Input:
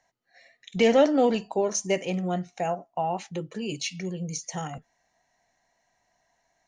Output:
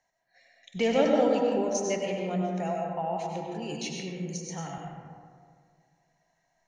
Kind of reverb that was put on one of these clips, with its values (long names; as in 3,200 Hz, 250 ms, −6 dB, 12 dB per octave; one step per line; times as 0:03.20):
comb and all-pass reverb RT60 2 s, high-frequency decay 0.4×, pre-delay 60 ms, DRR −0.5 dB
level −6 dB